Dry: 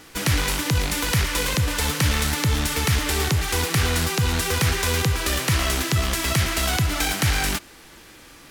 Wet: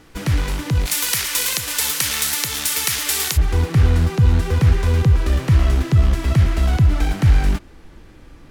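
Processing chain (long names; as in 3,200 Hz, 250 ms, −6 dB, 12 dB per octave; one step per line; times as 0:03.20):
spectral tilt −2 dB per octave, from 0:00.85 +3.5 dB per octave, from 0:03.36 −3.5 dB per octave
level −3 dB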